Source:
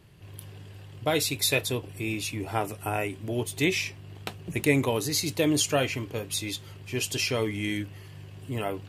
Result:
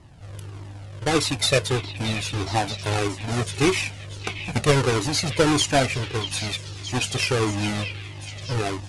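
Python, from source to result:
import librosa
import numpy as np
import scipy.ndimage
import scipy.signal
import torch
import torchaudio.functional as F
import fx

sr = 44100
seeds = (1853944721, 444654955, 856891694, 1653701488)

p1 = fx.halfwave_hold(x, sr)
p2 = scipy.signal.sosfilt(scipy.signal.butter(12, 11000.0, 'lowpass', fs=sr, output='sos'), p1)
p3 = fx.high_shelf(p2, sr, hz=8400.0, db=-4.0)
p4 = p3 + fx.echo_stepped(p3, sr, ms=630, hz=2800.0, octaves=0.7, feedback_pct=70, wet_db=-7, dry=0)
p5 = fx.comb_cascade(p4, sr, direction='falling', hz=1.6)
y = p5 * librosa.db_to_amplitude(5.5)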